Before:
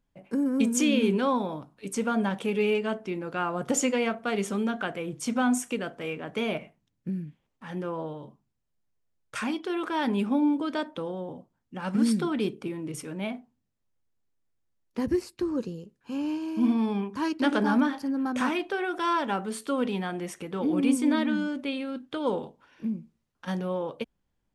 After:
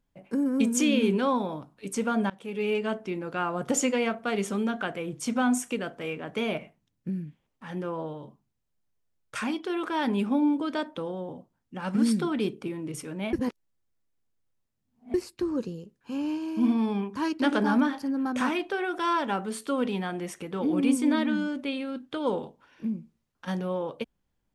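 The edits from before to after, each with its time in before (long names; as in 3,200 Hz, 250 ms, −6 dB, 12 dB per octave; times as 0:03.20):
0:02.30–0:02.83: fade in, from −23 dB
0:13.33–0:15.14: reverse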